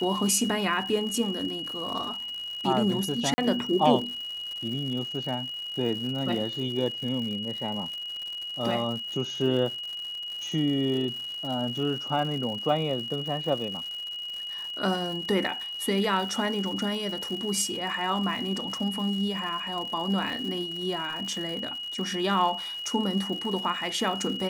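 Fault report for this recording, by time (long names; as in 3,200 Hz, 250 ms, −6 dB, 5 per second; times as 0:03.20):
surface crackle 170 per second −35 dBFS
whistle 2,900 Hz −33 dBFS
0:03.34–0:03.38: drop-out 40 ms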